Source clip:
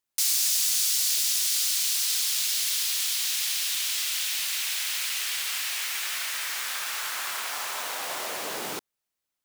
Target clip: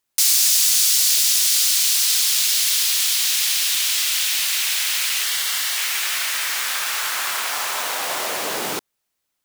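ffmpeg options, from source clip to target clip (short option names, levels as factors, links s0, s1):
-filter_complex "[0:a]asettb=1/sr,asplit=3[s0][s1][s2];[s0]atrim=end=5.234[s3];[s1]atrim=start=5.23:end=5.78,asetpts=PTS-STARTPTS,afade=t=in:d=0.004:c=qsin,afade=t=out:st=0.546:d=0.004:c=qsin,bandreject=f=2500:w=6.8[s4];[s2]atrim=start=5.776[s5];[s3][s4]acrossfade=d=0.004:c1=hsin:c2=qsin[s6];[s6][s5]acrossfade=d=0.004:c1=qsin:c2=hsin,volume=2.51"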